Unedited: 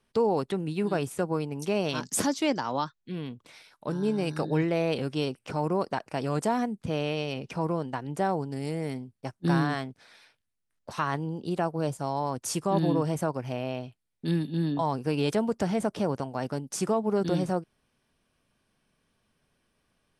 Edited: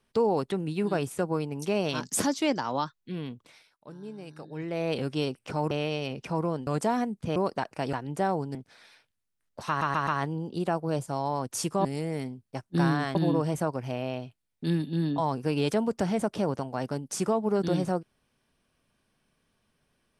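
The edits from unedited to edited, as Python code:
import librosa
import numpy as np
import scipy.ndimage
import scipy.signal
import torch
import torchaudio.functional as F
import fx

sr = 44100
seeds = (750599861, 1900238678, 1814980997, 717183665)

y = fx.edit(x, sr, fx.fade_down_up(start_s=3.32, length_s=1.67, db=-14.0, fade_s=0.45),
    fx.swap(start_s=5.71, length_s=0.57, other_s=6.97, other_length_s=0.96),
    fx.move(start_s=8.55, length_s=1.3, to_s=12.76),
    fx.stutter(start_s=10.98, slice_s=0.13, count=4), tone=tone)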